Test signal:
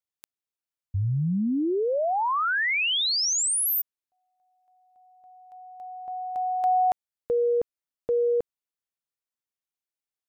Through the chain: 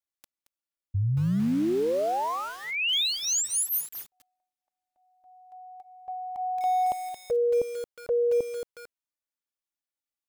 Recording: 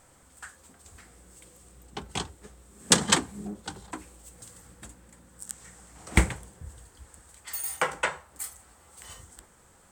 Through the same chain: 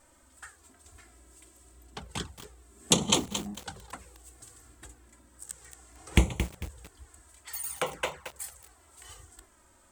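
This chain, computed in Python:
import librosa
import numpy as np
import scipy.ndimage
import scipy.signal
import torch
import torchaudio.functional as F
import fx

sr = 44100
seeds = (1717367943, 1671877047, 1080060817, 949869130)

y = fx.env_flanger(x, sr, rest_ms=3.5, full_db=-25.0)
y = fx.echo_crushed(y, sr, ms=224, feedback_pct=35, bits=6, wet_db=-8.5)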